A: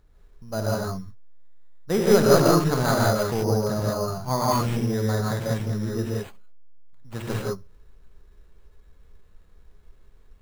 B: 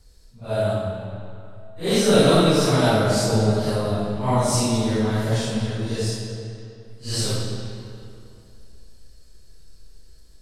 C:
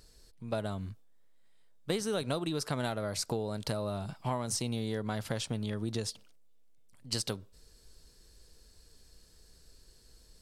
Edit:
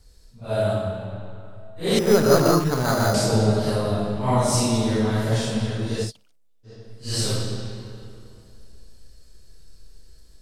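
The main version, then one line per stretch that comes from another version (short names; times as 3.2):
B
1.99–3.14 from A
6.07–6.68 from C, crossfade 0.10 s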